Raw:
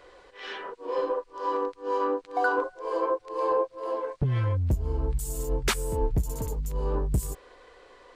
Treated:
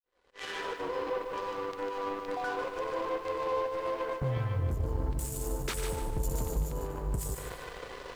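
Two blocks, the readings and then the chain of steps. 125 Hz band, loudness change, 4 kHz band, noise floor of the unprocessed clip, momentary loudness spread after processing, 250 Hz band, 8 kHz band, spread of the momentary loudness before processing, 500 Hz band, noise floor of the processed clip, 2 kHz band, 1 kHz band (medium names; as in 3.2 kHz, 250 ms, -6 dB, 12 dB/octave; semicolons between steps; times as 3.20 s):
-5.0 dB, -5.5 dB, -4.0 dB, -55 dBFS, 6 LU, -5.0 dB, -2.5 dB, 6 LU, -5.0 dB, -47 dBFS, -5.5 dB, -5.5 dB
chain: fade-in on the opening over 0.94 s; in parallel at 0 dB: compressor with a negative ratio -37 dBFS, ratio -1; on the sum: saturation -19.5 dBFS, distortion -19 dB; peak limiter -30 dBFS, peak gain reduction 10 dB; on a send: two-band feedback delay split 880 Hz, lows 365 ms, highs 93 ms, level -14 dB; on the sum: power-law waveshaper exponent 2; bit-crushed delay 149 ms, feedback 35%, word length 11-bit, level -6 dB; trim +6 dB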